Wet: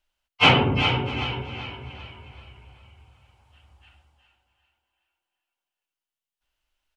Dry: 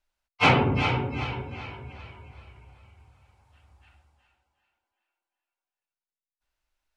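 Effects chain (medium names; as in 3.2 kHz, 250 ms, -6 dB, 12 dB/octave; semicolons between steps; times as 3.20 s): peaking EQ 3 kHz +9.5 dB 0.3 oct; on a send: delay 648 ms -20.5 dB; on the sum: trim +1.5 dB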